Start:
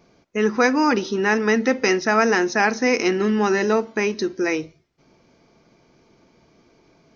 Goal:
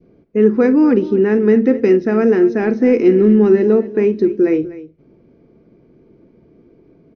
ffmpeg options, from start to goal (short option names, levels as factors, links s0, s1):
-filter_complex "[0:a]adynamicequalizer=threshold=0.0316:dfrequency=1000:dqfactor=0.78:tfrequency=1000:tqfactor=0.78:attack=5:release=100:ratio=0.375:range=1.5:mode=cutabove:tftype=bell,asettb=1/sr,asplit=3[s0][s1][s2];[s0]atrim=end=2.614[s3];[s1]atrim=start=2.61:end=3.56,asetpts=PTS-STARTPTS,afade=t=in:d=0.004:c=qsin,afade=t=out:st=0.946:d=0.004:c=qsin,aeval=exprs='0.501*(cos(1*acos(clip(val(0)/0.501,-1,1)))-cos(1*PI/2))+0.02*(cos(5*acos(clip(val(0)/0.501,-1,1)))-cos(5*PI/2))':c=same[s4];[s2]atrim=start=3.556[s5];[s3][s4]acrossfade=d=0.004:c1=hsin:c2=qsin[s6];[s6][s5]acrossfade=d=0.004:c1=qsin:c2=hsin,lowpass=2300,lowshelf=f=590:t=q:w=1.5:g=11,asplit=2[s7][s8];[s8]aecho=0:1:42|48|248:0.112|0.119|0.15[s9];[s7][s9]amix=inputs=2:normalize=0,volume=0.631"